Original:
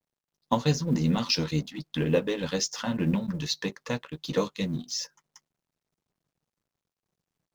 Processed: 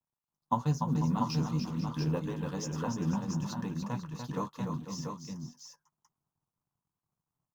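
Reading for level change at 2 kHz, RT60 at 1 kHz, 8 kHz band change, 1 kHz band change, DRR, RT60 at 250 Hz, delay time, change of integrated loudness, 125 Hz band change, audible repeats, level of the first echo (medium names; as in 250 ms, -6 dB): -11.5 dB, no reverb, -9.5 dB, 0.0 dB, no reverb, no reverb, 294 ms, -5.0 dB, -2.0 dB, 3, -6.0 dB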